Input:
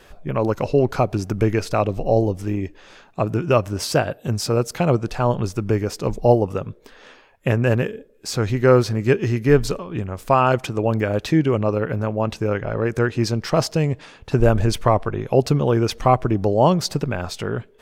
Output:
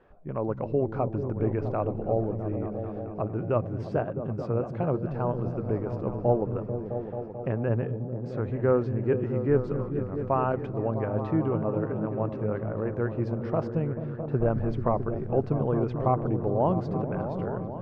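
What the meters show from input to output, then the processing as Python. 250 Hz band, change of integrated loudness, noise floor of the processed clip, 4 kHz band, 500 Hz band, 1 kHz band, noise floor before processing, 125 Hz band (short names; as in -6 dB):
-7.0 dB, -8.0 dB, -37 dBFS, under -25 dB, -7.5 dB, -9.0 dB, -51 dBFS, -7.5 dB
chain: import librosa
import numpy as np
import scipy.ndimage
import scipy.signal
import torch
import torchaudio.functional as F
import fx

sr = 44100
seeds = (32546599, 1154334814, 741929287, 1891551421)

p1 = scipy.signal.sosfilt(scipy.signal.butter(2, 1200.0, 'lowpass', fs=sr, output='sos'), x)
p2 = fx.low_shelf(p1, sr, hz=65.0, db=-6.5)
p3 = p2 + fx.echo_opening(p2, sr, ms=219, hz=200, octaves=1, feedback_pct=70, wet_db=-3, dry=0)
y = F.gain(torch.from_numpy(p3), -8.5).numpy()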